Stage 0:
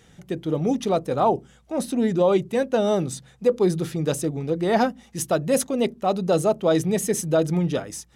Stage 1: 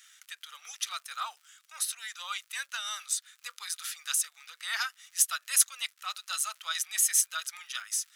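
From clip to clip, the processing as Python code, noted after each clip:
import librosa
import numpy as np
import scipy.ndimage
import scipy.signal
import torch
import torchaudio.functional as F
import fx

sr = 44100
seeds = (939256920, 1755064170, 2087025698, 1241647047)

y = fx.high_shelf(x, sr, hz=4800.0, db=9.5)
y = fx.dmg_crackle(y, sr, seeds[0], per_s=110.0, level_db=-43.0)
y = scipy.signal.sosfilt(scipy.signal.ellip(4, 1.0, 80, 1300.0, 'highpass', fs=sr, output='sos'), y)
y = F.gain(torch.from_numpy(y), -1.0).numpy()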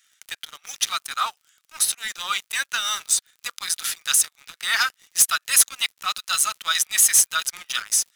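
y = fx.leveller(x, sr, passes=3)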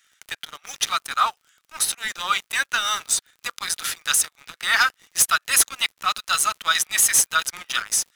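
y = fx.high_shelf(x, sr, hz=2100.0, db=-9.0)
y = F.gain(torch.from_numpy(y), 7.0).numpy()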